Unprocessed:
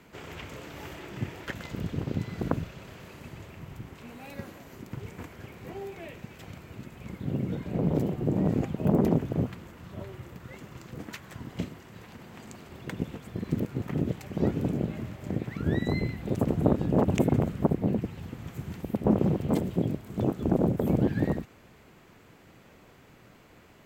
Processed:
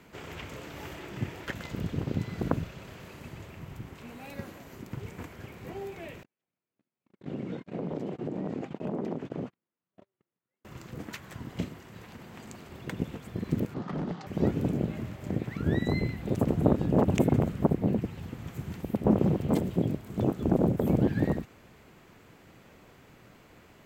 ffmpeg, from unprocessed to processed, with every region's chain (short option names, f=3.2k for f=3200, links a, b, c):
-filter_complex "[0:a]asettb=1/sr,asplit=3[a][b][c];[a]atrim=end=6.234[d];[b]atrim=start=6.23:end=10.65,asetpts=PTS-STARTPTS,afade=t=in:d=0.004:c=qsin,afade=t=out:st=4.416:d=0.004:c=qsin,agate=range=-44dB:threshold=-35dB:ratio=16:release=100:detection=peak,highpass=210,lowpass=5.8k,acompressor=threshold=-30dB:ratio=4:attack=3.2:release=140:knee=1:detection=peak[e];[c]atrim=start=10.646[f];[d][e]acrossfade=d=0.004:c1=hsin:c2=qsin[g];[g][f]acrossfade=d=0.004:c1=qsin:c2=hsin,asettb=1/sr,asplit=3[h][i][j];[h]atrim=end=13.744[k];[i]atrim=start=13.74:end=14.27,asetpts=PTS-STARTPTS,afade=t=in:d=0.004:c=qsin,afade=t=out:st=0.526:d=0.004:c=qsin,highpass=f=150:w=0.5412,highpass=f=150:w=1.3066,equalizer=f=170:t=q:w=4:g=5,equalizer=f=800:t=q:w=4:g=6,equalizer=f=1.2k:t=q:w=4:g=8,equalizer=f=2.4k:t=q:w=4:g=-9,equalizer=f=4.6k:t=q:w=4:g=3,lowpass=f=5.6k:w=0.5412,lowpass=f=5.6k:w=1.3066,volume=29.5dB,asoftclip=hard,volume=-29.5dB[l];[j]atrim=start=14.266[m];[k][l]acrossfade=d=0.004:c1=hsin:c2=qsin[n];[n][m]acrossfade=d=0.004:c1=qsin:c2=hsin"